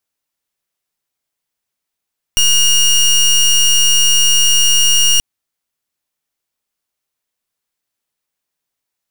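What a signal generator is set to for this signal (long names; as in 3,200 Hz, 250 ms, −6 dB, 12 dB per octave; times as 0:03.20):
pulse wave 2,850 Hz, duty 20% −10.5 dBFS 2.83 s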